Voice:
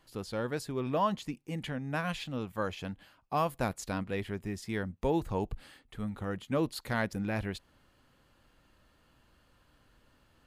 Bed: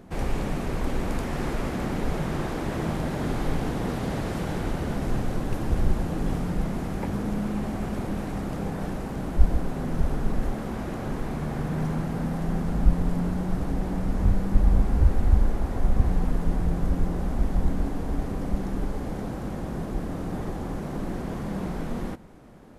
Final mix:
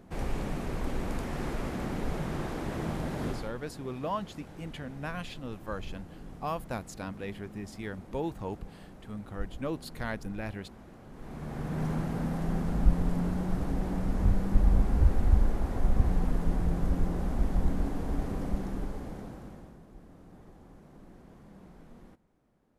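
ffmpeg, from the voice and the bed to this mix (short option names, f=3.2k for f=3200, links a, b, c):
-filter_complex "[0:a]adelay=3100,volume=-4dB[a];[1:a]volume=10dB,afade=t=out:st=3.27:d=0.25:silence=0.211349,afade=t=in:st=11.12:d=0.78:silence=0.16788,afade=t=out:st=18.37:d=1.42:silence=0.125893[b];[a][b]amix=inputs=2:normalize=0"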